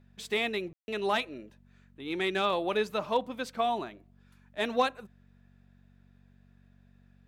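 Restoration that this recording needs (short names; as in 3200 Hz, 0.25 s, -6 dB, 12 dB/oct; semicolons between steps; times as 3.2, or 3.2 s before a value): de-hum 47.3 Hz, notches 5; room tone fill 0.73–0.88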